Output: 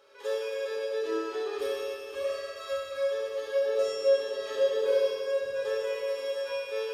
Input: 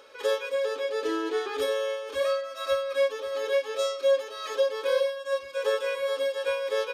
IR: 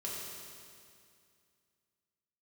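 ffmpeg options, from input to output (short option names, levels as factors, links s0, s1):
-filter_complex "[0:a]asplit=3[s0][s1][s2];[s0]afade=t=out:st=3.54:d=0.02[s3];[s1]equalizer=f=150:w=0.4:g=13.5,afade=t=in:st=3.54:d=0.02,afade=t=out:st=5.59:d=0.02[s4];[s2]afade=t=in:st=5.59:d=0.02[s5];[s3][s4][s5]amix=inputs=3:normalize=0[s6];[1:a]atrim=start_sample=2205[s7];[s6][s7]afir=irnorm=-1:irlink=0,volume=0.501"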